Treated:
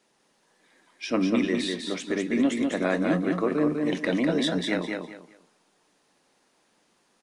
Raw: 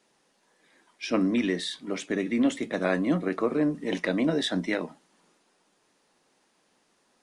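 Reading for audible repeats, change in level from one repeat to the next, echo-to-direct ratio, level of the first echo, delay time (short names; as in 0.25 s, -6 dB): 3, -12.0 dB, -3.5 dB, -4.0 dB, 0.199 s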